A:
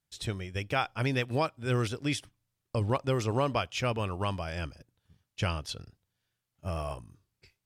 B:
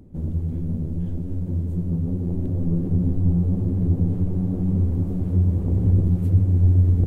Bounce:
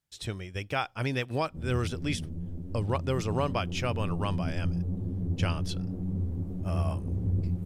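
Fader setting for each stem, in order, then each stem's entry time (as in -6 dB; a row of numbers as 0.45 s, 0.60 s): -1.0 dB, -10.5 dB; 0.00 s, 1.40 s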